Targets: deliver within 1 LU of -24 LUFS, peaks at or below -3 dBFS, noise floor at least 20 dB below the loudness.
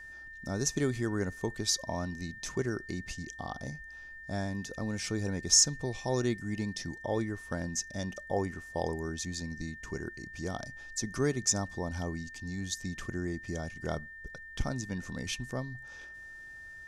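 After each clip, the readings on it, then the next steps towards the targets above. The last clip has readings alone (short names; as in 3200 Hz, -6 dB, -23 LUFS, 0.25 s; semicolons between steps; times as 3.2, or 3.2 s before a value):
steady tone 1800 Hz; tone level -45 dBFS; loudness -33.5 LUFS; peak -10.0 dBFS; loudness target -24.0 LUFS
-> notch 1800 Hz, Q 30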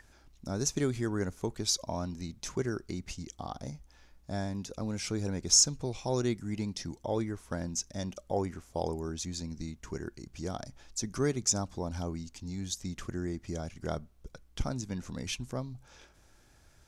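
steady tone none; loudness -34.0 LUFS; peak -10.0 dBFS; loudness target -24.0 LUFS
-> gain +10 dB; limiter -3 dBFS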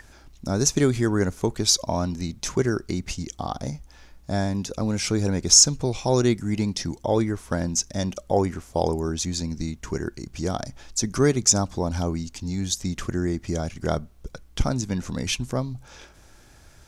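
loudness -24.5 LUFS; peak -3.0 dBFS; noise floor -51 dBFS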